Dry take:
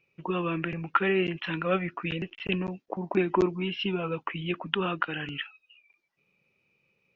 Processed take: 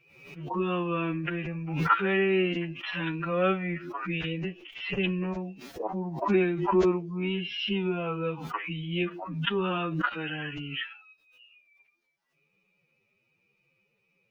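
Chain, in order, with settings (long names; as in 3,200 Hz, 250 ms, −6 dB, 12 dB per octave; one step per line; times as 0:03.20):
phase-vocoder stretch with locked phases 2×
background raised ahead of every attack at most 67 dB per second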